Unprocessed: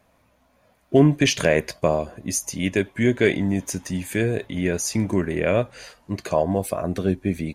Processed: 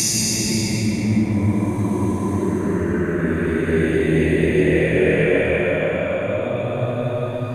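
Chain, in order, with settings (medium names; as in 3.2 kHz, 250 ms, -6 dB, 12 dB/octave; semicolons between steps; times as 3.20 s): compressor with a negative ratio -23 dBFS, ratio -0.5; Paulstretch 9.8×, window 0.25 s, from 4.89 s; trim +5 dB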